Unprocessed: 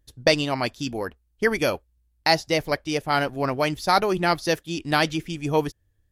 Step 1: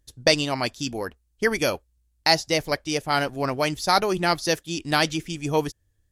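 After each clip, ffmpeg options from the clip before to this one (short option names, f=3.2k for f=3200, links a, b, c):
-af "equalizer=f=7.3k:w=0.77:g=7,volume=-1dB"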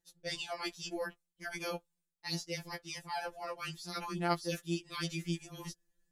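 -af "areverse,acompressor=threshold=-30dB:ratio=5,areverse,afftfilt=real='re*2.83*eq(mod(b,8),0)':imag='im*2.83*eq(mod(b,8),0)':win_size=2048:overlap=0.75,volume=-3dB"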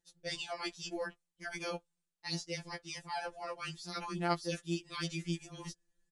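-filter_complex "[0:a]asplit=2[a][b];[b]acrusher=bits=5:mode=log:mix=0:aa=0.000001,volume=-12dB[c];[a][c]amix=inputs=2:normalize=0,aresample=22050,aresample=44100,volume=-2.5dB"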